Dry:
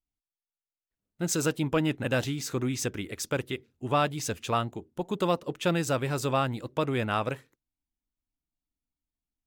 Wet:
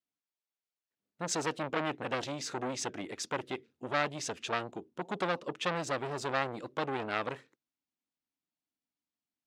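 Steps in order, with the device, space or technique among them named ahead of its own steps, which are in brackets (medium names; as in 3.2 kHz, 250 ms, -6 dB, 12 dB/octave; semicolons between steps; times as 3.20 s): public-address speaker with an overloaded transformer (transformer saturation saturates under 1.8 kHz; band-pass 200–6000 Hz)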